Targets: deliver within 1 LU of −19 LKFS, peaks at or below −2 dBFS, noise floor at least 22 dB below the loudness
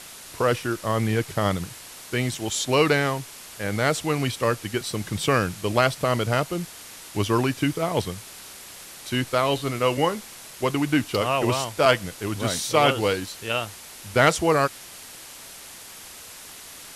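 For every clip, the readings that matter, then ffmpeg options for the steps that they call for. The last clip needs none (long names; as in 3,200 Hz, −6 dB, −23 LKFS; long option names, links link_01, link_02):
background noise floor −43 dBFS; target noise floor −46 dBFS; integrated loudness −24.0 LKFS; sample peak −4.5 dBFS; target loudness −19.0 LKFS
→ -af "afftdn=noise_reduction=6:noise_floor=-43"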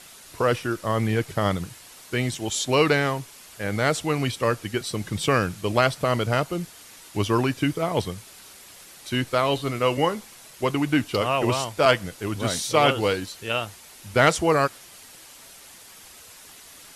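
background noise floor −47 dBFS; integrated loudness −24.0 LKFS; sample peak −4.5 dBFS; target loudness −19.0 LKFS
→ -af "volume=5dB,alimiter=limit=-2dB:level=0:latency=1"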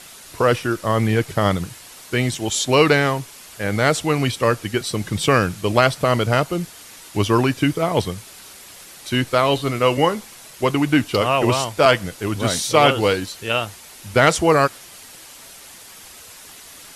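integrated loudness −19.0 LKFS; sample peak −2.0 dBFS; background noise floor −42 dBFS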